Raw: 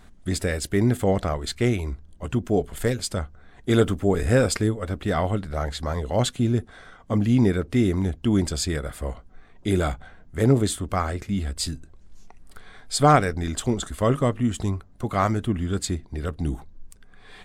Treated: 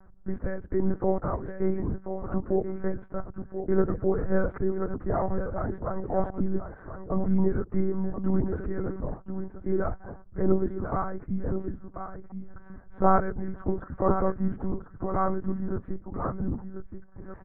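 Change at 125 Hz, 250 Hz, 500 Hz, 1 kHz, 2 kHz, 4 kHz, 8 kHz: -8.5 dB, -5.0 dB, -3.5 dB, -4.0 dB, -10.5 dB, under -40 dB, under -40 dB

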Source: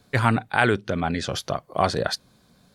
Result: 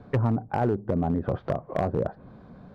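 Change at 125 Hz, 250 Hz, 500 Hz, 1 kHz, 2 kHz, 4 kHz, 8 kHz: 0.0 dB, -0.5 dB, -2.0 dB, -7.0 dB, -17.0 dB, under -20 dB, under -25 dB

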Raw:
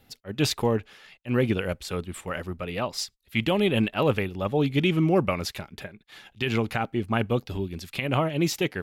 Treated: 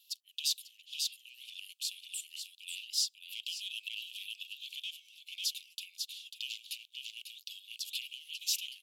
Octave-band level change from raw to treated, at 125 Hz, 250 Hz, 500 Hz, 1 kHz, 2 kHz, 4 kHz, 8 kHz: under -40 dB, under -40 dB, under -40 dB, under -40 dB, -15.0 dB, -1.5 dB, +0.5 dB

